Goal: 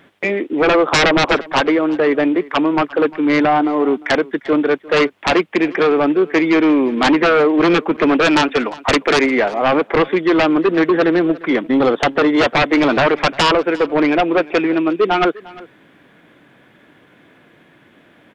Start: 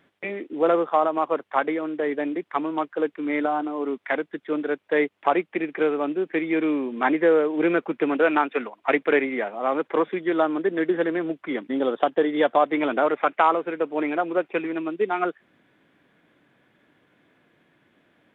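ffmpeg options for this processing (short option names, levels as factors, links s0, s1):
-filter_complex "[0:a]asettb=1/sr,asplit=3[s0][s1][s2];[s0]atrim=end=0.864[s3];[s1]atrim=start=0.86:end=1.35,asetpts=PTS-STARTPTS,afade=t=in:d=0.004:c=qsin,afade=t=out:st=0.486:d=0.004:c=qsin,equalizer=f=540:t=o:w=2.1:g=7[s4];[s2]atrim=start=1.346[s5];[s3][s4]acrossfade=d=0.004:c1=hsin:c2=qsin[s6];[s6][s5]acrossfade=d=0.004:c1=qsin:c2=hsin,aeval=exprs='0.794*sin(PI/2*6.31*val(0)/0.794)':c=same,aecho=1:1:351:0.0891,volume=0.447"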